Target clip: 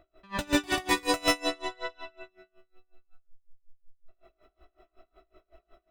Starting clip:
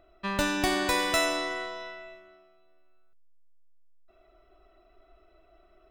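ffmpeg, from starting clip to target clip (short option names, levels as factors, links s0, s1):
-af "aecho=1:1:84.55|139.9:0.447|1,flanger=delay=15.5:depth=4.7:speed=0.39,aeval=exprs='val(0)*pow(10,-28*(0.5-0.5*cos(2*PI*5.4*n/s))/20)':c=same,volume=1.78"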